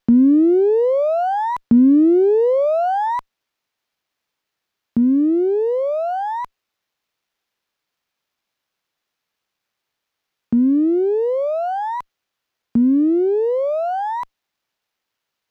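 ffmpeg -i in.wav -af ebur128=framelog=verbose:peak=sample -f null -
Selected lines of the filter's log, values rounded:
Integrated loudness:
  I:         -17.3 LUFS
  Threshold: -27.6 LUFS
Loudness range:
  LRA:         9.3 LU
  Threshold: -40.3 LUFS
  LRA low:   -25.8 LUFS
  LRA high:  -16.5 LUFS
Sample peak:
  Peak:       -5.7 dBFS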